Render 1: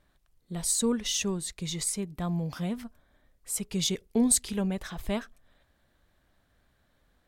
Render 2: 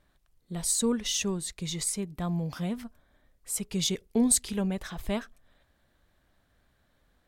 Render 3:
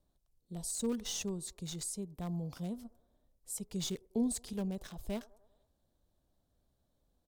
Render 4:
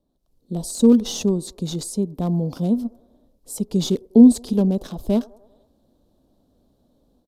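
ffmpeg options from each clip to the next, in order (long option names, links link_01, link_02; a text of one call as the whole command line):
ffmpeg -i in.wav -af anull out.wav
ffmpeg -i in.wav -filter_complex "[0:a]acrossover=split=360|1000|3500[link_01][link_02][link_03][link_04];[link_02]aecho=1:1:98|196|294|392|490:0.106|0.0625|0.0369|0.0218|0.0128[link_05];[link_03]acrusher=bits=4:dc=4:mix=0:aa=0.000001[link_06];[link_04]alimiter=limit=-22dB:level=0:latency=1:release=26[link_07];[link_01][link_05][link_06][link_07]amix=inputs=4:normalize=0,volume=-7.5dB" out.wav
ffmpeg -i in.wav -af "dynaudnorm=framelen=160:gausssize=3:maxgain=11dB,aresample=32000,aresample=44100,equalizer=frequency=250:width_type=o:width=1:gain=12,equalizer=frequency=500:width_type=o:width=1:gain=6,equalizer=frequency=1000:width_type=o:width=1:gain=3,equalizer=frequency=2000:width_type=o:width=1:gain=-8,equalizer=frequency=4000:width_type=o:width=1:gain=4,equalizer=frequency=8000:width_type=o:width=1:gain=-4,volume=-1dB" out.wav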